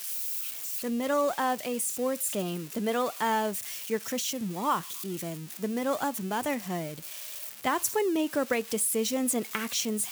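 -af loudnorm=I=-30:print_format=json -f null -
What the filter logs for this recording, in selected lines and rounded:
"input_i" : "-29.5",
"input_tp" : "-12.2",
"input_lra" : "3.2",
"input_thresh" : "-39.5",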